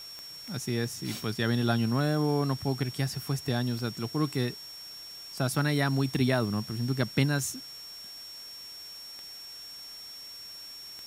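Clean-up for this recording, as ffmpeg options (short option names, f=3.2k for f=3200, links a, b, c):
-af "adeclick=t=4,bandreject=f=5.5k:w=30,afwtdn=0.0028"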